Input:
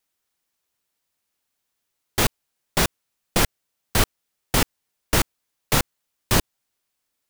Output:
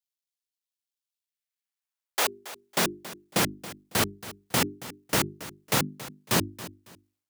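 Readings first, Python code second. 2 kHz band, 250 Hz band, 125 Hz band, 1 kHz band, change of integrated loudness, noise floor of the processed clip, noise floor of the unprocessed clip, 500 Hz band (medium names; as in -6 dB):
-3.5 dB, -3.0 dB, -7.0 dB, -3.5 dB, -4.0 dB, under -85 dBFS, -79 dBFS, -3.5 dB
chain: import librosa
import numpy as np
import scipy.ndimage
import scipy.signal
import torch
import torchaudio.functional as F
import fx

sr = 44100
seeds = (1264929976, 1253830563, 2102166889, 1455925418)

p1 = fx.law_mismatch(x, sr, coded='A')
p2 = fx.hum_notches(p1, sr, base_hz=50, count=8)
p3 = fx.filter_sweep_highpass(p2, sr, from_hz=3300.0, to_hz=150.0, start_s=1.16, end_s=3.06, q=1.1)
p4 = fx.transient(p3, sr, attack_db=0, sustain_db=6)
p5 = p4 + fx.echo_feedback(p4, sr, ms=276, feedback_pct=25, wet_db=-16, dry=0)
y = p5 * librosa.db_to_amplitude(-3.5)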